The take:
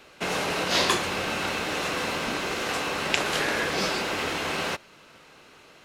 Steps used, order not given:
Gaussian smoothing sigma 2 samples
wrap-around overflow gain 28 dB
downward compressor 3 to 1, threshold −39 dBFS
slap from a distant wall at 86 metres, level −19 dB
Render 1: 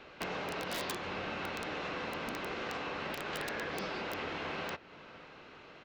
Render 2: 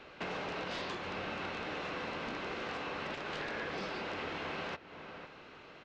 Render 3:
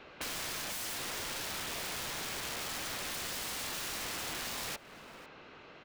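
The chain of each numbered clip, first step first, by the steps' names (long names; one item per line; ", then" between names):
Gaussian smoothing, then downward compressor, then slap from a distant wall, then wrap-around overflow
slap from a distant wall, then downward compressor, then wrap-around overflow, then Gaussian smoothing
Gaussian smoothing, then wrap-around overflow, then slap from a distant wall, then downward compressor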